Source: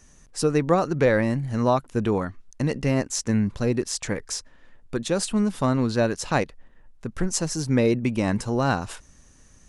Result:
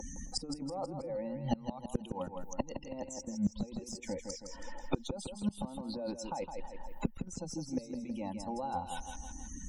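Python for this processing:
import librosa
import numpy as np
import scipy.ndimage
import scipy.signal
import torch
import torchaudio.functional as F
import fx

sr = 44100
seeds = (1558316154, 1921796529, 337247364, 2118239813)

y = fx.bin_expand(x, sr, power=1.5)
y = fx.over_compress(y, sr, threshold_db=-32.0, ratio=-1.0)
y = fx.vibrato(y, sr, rate_hz=1.6, depth_cents=24.0)
y = fx.spec_topn(y, sr, count=64)
y = fx.cheby_harmonics(y, sr, harmonics=(3,), levels_db=(-22,), full_scale_db=-15.0)
y = fx.fixed_phaser(y, sr, hz=430.0, stages=6)
y = fx.small_body(y, sr, hz=(520.0, 830.0, 1500.0), ring_ms=30, db=17)
y = fx.gate_flip(y, sr, shuts_db=-32.0, range_db=-29)
y = fx.echo_feedback(y, sr, ms=161, feedback_pct=35, wet_db=-8)
y = fx.band_squash(y, sr, depth_pct=70)
y = y * 10.0 ** (17.0 / 20.0)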